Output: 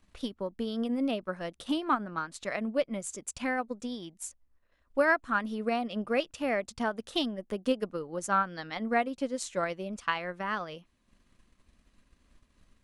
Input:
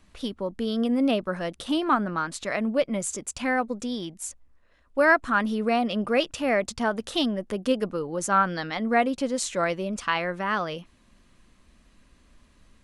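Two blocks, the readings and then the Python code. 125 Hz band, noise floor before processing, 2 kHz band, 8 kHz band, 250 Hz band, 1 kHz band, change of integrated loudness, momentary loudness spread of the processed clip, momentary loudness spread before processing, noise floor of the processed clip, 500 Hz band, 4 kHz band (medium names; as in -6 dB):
-8.0 dB, -60 dBFS, -6.0 dB, -7.5 dB, -6.5 dB, -6.0 dB, -6.0 dB, 9 LU, 9 LU, -71 dBFS, -6.0 dB, -6.0 dB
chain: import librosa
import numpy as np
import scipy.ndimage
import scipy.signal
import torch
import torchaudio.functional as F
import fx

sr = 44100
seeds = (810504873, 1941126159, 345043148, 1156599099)

y = fx.transient(x, sr, attack_db=5, sustain_db=-5)
y = y * 10.0 ** (-7.5 / 20.0)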